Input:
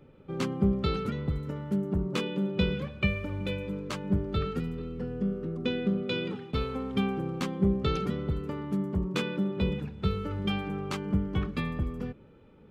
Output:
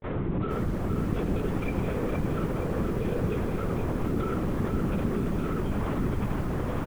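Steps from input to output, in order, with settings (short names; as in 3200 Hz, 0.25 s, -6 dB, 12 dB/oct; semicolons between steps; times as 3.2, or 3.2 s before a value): delta modulation 32 kbps, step -28.5 dBFS; grains 0.1 s, spray 0.1 s, pitch spread up and down by 0 st; LPF 1500 Hz 12 dB/oct; notches 60/120/180/240/300 Hz; time stretch by phase-locked vocoder 0.54×; on a send: feedback echo 91 ms, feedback 53%, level -14 dB; on the sum: limiter -29.5 dBFS, peak gain reduction 13 dB; HPF 64 Hz 12 dB/oct; LPC vocoder at 8 kHz whisper; bell 180 Hz +5 dB 1.2 oct; lo-fi delay 0.468 s, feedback 55%, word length 9-bit, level -5 dB; gain +6.5 dB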